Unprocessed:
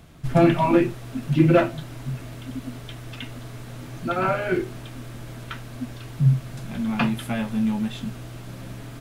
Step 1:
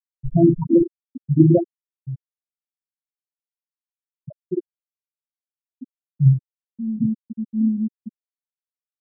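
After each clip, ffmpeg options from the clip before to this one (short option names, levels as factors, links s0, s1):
-af "lowshelf=f=420:g=11.5,afftfilt=real='re*gte(hypot(re,im),1.58)':imag='im*gte(hypot(re,im),1.58)':win_size=1024:overlap=0.75,adynamicequalizer=threshold=0.0794:dfrequency=310:dqfactor=0.78:tfrequency=310:tqfactor=0.78:attack=5:release=100:ratio=0.375:range=3:mode=boostabove:tftype=bell,volume=0.376"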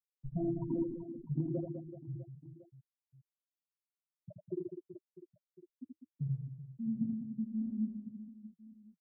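-filter_complex "[0:a]acrossover=split=160|670[s0][s1][s2];[s0]acompressor=threshold=0.0282:ratio=4[s3];[s1]acompressor=threshold=0.0562:ratio=4[s4];[s2]acompressor=threshold=0.00501:ratio=4[s5];[s3][s4][s5]amix=inputs=3:normalize=0,flanger=delay=1.5:depth=3.4:regen=-67:speed=1.8:shape=sinusoidal,asplit=2[s6][s7];[s7]aecho=0:1:80|200|380|650|1055:0.631|0.398|0.251|0.158|0.1[s8];[s6][s8]amix=inputs=2:normalize=0,volume=0.422"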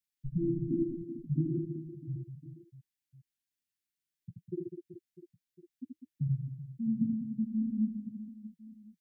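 -af "asuperstop=centerf=730:order=12:qfactor=0.63,volume=1.68"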